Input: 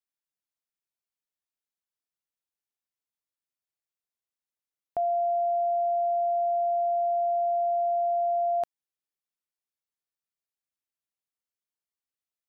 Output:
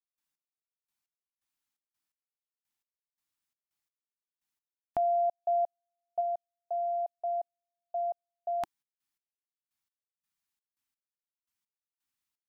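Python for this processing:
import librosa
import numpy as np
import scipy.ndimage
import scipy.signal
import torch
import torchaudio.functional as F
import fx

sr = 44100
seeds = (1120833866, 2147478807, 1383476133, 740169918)

y = fx.band_shelf(x, sr, hz=510.0, db=fx.steps((0.0, -8.0), (6.2, -14.5)), octaves=1.0)
y = fx.step_gate(y, sr, bpm=85, pattern='.x...x..xx', floor_db=-60.0, edge_ms=4.5)
y = y * 10.0 ** (5.0 / 20.0)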